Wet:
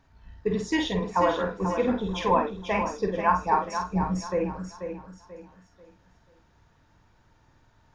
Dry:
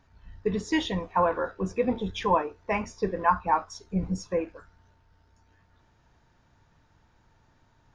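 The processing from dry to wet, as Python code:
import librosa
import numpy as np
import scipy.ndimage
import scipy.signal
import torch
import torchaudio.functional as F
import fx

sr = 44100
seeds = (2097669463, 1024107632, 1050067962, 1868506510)

y = fx.doubler(x, sr, ms=49.0, db=-5.5)
y = fx.echo_feedback(y, sr, ms=487, feedback_pct=33, wet_db=-8.0)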